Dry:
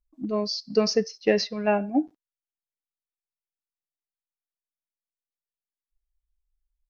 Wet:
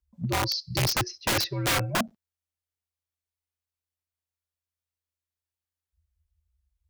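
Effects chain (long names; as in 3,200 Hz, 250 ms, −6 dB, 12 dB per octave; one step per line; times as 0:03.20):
time-frequency box erased 0:00.59–0:00.95, 410–2,000 Hz
frequency shifter −84 Hz
wrap-around overflow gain 20.5 dB
level +1.5 dB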